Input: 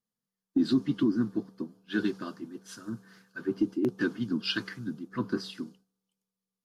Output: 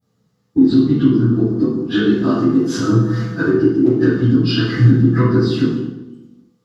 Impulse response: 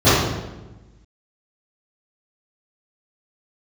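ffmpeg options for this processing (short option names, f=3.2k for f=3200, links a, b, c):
-filter_complex "[0:a]asettb=1/sr,asplit=3[a][b][c];[a]atrim=end=2.874[d];[b]atrim=start=2.87:end=3.41,asetpts=PTS-STARTPTS,afade=t=in:d=0.004:c=qsin,afade=t=out:st=0.536:d=0.004:c=qsin,aecho=1:1:6.2:0.73,atrim=end_sample=23814[e];[c]atrim=start=3.406[f];[d][e]acrossfade=d=0.004:c1=hsin:c2=qsin[g];[g][f]acrossfade=d=0.004:c1=qsin:c2=hsin,acompressor=threshold=-39dB:ratio=12[h];[1:a]atrim=start_sample=2205,asetrate=48510,aresample=44100[i];[h][i]afir=irnorm=-1:irlink=0,volume=-2.5dB"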